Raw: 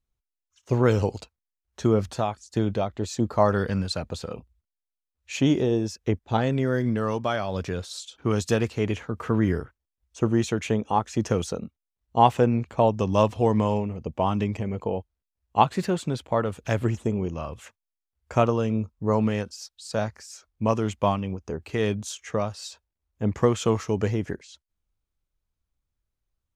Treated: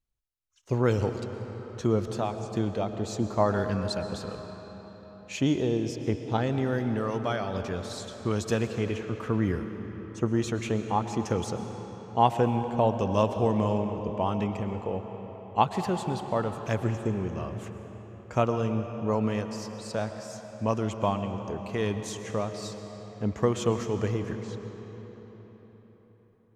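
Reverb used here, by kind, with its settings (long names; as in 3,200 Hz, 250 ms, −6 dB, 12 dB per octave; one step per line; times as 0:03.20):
comb and all-pass reverb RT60 4.7 s, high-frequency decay 0.7×, pre-delay 80 ms, DRR 7.5 dB
level −4 dB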